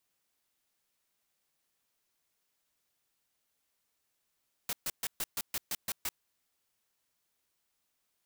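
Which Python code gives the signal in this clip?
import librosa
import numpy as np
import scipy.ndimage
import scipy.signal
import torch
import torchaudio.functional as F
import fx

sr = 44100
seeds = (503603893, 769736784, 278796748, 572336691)

y = fx.noise_burst(sr, seeds[0], colour='white', on_s=0.04, off_s=0.13, bursts=9, level_db=-34.0)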